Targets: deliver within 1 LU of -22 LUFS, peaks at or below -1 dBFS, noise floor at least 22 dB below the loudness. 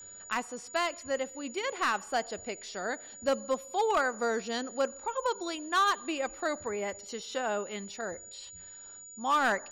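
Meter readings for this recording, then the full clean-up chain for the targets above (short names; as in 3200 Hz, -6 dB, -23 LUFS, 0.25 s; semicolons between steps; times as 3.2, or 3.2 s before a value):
clipped 0.5%; flat tops at -21.0 dBFS; steady tone 6900 Hz; tone level -46 dBFS; loudness -32.0 LUFS; peak -21.0 dBFS; loudness target -22.0 LUFS
-> clip repair -21 dBFS; notch 6900 Hz, Q 30; gain +10 dB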